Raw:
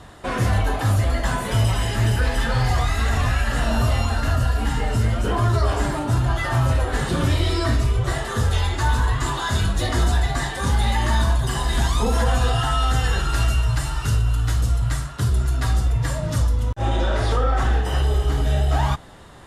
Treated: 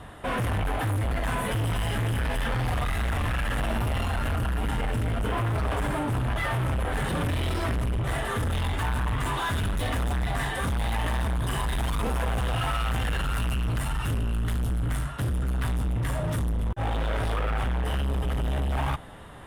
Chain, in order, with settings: hard clip -24.5 dBFS, distortion -7 dB; band shelf 5500 Hz -10 dB 1.1 oct; notch 360 Hz, Q 12

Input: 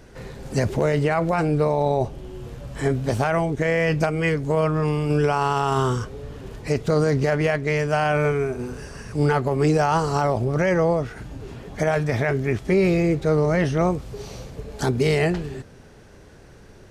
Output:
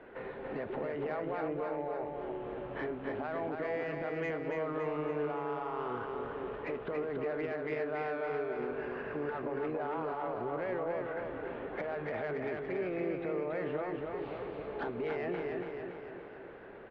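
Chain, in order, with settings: steep low-pass 3800 Hz 36 dB/oct; three-band isolator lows -21 dB, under 270 Hz, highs -23 dB, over 2500 Hz; limiter -20.5 dBFS, peak gain reduction 10.5 dB; compressor 3:1, threshold -36 dBFS, peak gain reduction 9.5 dB; soft clip -28 dBFS, distortion -23 dB; feedback echo 0.282 s, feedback 56%, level -4 dB

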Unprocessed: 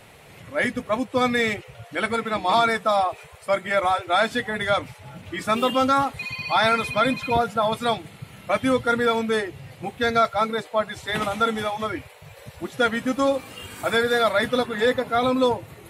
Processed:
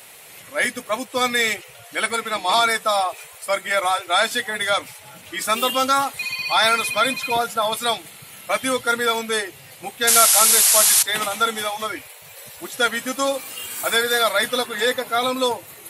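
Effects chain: painted sound noise, 10.07–11.03, 620–12000 Hz -27 dBFS; RIAA curve recording; gain +1 dB

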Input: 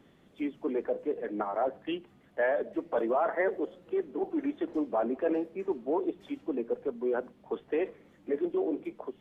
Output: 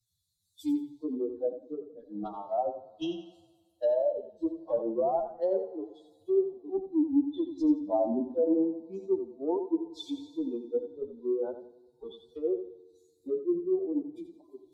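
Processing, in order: per-bin expansion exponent 2; in parallel at +1 dB: compressor 4:1, threshold -42 dBFS, peak gain reduction 13 dB; on the sum: soft clip -21.5 dBFS, distortion -22 dB; treble ducked by the level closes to 690 Hz, closed at -27 dBFS; notch 440 Hz, Q 12; on a send: flutter echo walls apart 9.4 m, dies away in 0.38 s; on the sum: FDN reverb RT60 2.3 s, low-frequency decay 1.05×, high-frequency decay 0.9×, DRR 15 dB; time stretch by phase-locked vocoder 1.6×; EQ curve 820 Hz 0 dB, 2200 Hz -29 dB, 3800 Hz +10 dB; three-band expander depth 70%; gain +3.5 dB

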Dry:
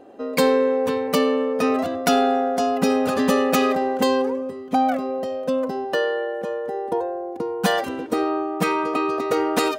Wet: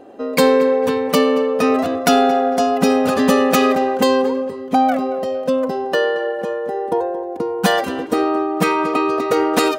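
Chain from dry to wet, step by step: tape echo 0.226 s, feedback 31%, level -15.5 dB, low-pass 5100 Hz; gain +4.5 dB

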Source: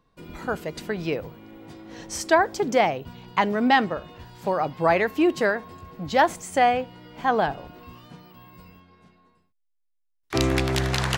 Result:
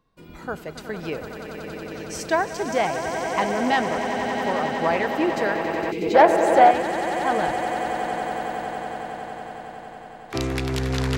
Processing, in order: swelling echo 92 ms, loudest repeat 8, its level -11 dB; 5.91–6.15 spectral gain 500–2000 Hz -19 dB; 6.02–6.71 bell 640 Hz +10 dB 1.5 oct; core saturation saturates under 690 Hz; gain -3 dB

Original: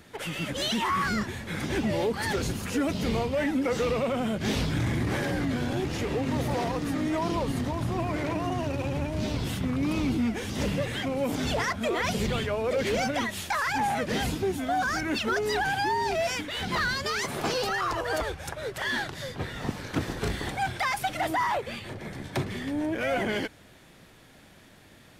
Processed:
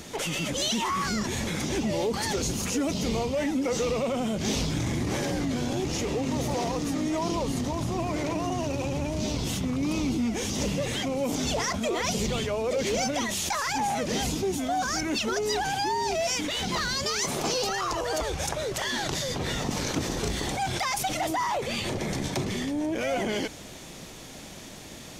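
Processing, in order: fifteen-band EQ 100 Hz -5 dB, 1600 Hz -7 dB, 6300 Hz +9 dB; in parallel at 0 dB: negative-ratio compressor -40 dBFS, ratio -1; on the sum: gain -1 dB

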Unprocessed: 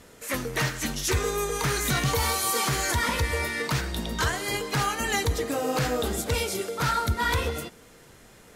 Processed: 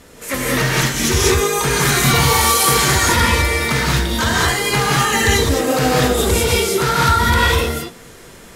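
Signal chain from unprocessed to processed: non-linear reverb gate 0.23 s rising, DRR -4.5 dB; gain +6 dB

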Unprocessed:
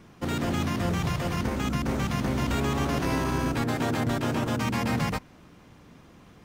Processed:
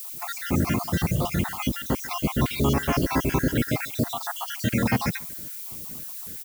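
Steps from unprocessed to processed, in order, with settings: random spectral dropouts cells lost 64%; outdoor echo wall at 25 m, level -22 dB; added noise violet -43 dBFS; gain +6 dB

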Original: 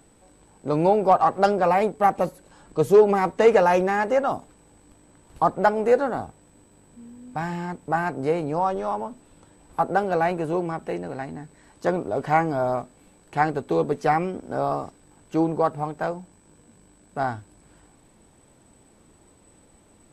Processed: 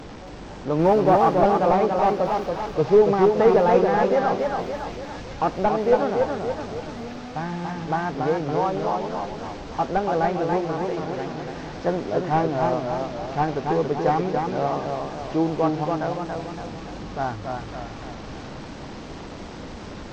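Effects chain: delta modulation 32 kbps, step -30.5 dBFS; high shelf 2600 Hz -11 dB; 0.79–1.35 sample leveller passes 1; thin delay 1.177 s, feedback 71%, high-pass 3200 Hz, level -3.5 dB; warbling echo 0.282 s, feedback 51%, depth 94 cents, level -4 dB

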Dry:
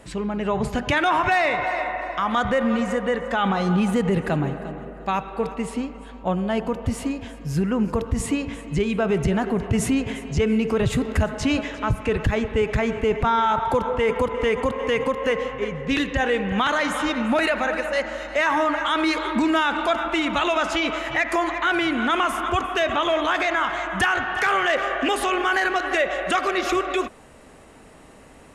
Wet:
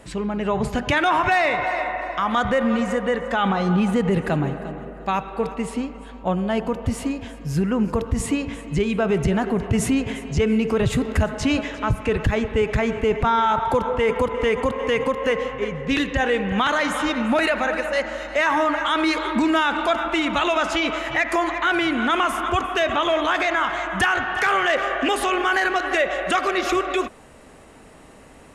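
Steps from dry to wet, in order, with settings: 3.51–4.09 high shelf 5300 Hz -> 7600 Hz -7 dB; gain +1 dB

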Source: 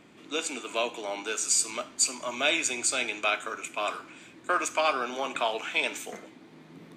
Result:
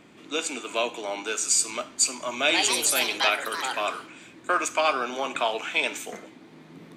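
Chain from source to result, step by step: 2.34–4.34 echoes that change speed 0.149 s, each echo +4 st, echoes 2; gain +2.5 dB

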